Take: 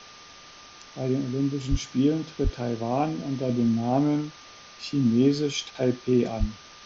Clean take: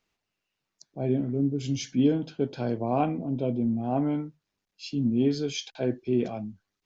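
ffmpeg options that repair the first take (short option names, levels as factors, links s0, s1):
-filter_complex "[0:a]bandreject=f=1200:w=30,asplit=3[s0][s1][s2];[s0]afade=t=out:st=1.7:d=0.02[s3];[s1]highpass=f=140:w=0.5412,highpass=f=140:w=1.3066,afade=t=in:st=1.7:d=0.02,afade=t=out:st=1.82:d=0.02[s4];[s2]afade=t=in:st=1.82:d=0.02[s5];[s3][s4][s5]amix=inputs=3:normalize=0,asplit=3[s6][s7][s8];[s6]afade=t=out:st=2.43:d=0.02[s9];[s7]highpass=f=140:w=0.5412,highpass=f=140:w=1.3066,afade=t=in:st=2.43:d=0.02,afade=t=out:st=2.55:d=0.02[s10];[s8]afade=t=in:st=2.55:d=0.02[s11];[s9][s10][s11]amix=inputs=3:normalize=0,asplit=3[s12][s13][s14];[s12]afade=t=out:st=6.39:d=0.02[s15];[s13]highpass=f=140:w=0.5412,highpass=f=140:w=1.3066,afade=t=in:st=6.39:d=0.02,afade=t=out:st=6.51:d=0.02[s16];[s14]afade=t=in:st=6.51:d=0.02[s17];[s15][s16][s17]amix=inputs=3:normalize=0,afwtdn=0.0071,asetnsamples=n=441:p=0,asendcmd='3.49 volume volume -3.5dB',volume=1"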